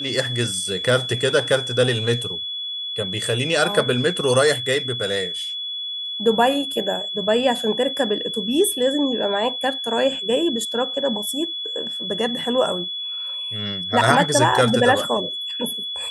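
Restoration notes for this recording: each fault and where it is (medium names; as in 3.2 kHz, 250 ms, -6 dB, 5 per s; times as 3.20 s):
whine 3.4 kHz -26 dBFS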